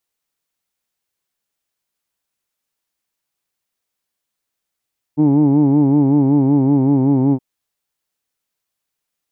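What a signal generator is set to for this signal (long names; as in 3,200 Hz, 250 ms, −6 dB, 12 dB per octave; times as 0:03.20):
vowel by formant synthesis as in who'd, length 2.22 s, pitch 146 Hz, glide −1.5 semitones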